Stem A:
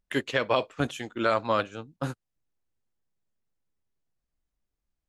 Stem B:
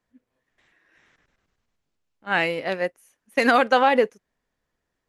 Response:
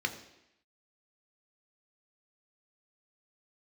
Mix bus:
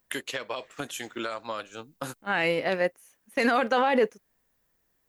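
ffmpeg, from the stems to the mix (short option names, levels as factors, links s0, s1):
-filter_complex "[0:a]aemphasis=mode=production:type=bsi,acompressor=threshold=0.0224:ratio=8,volume=1.41[s0];[1:a]volume=1.19[s1];[s0][s1]amix=inputs=2:normalize=0,alimiter=limit=0.2:level=0:latency=1:release=18"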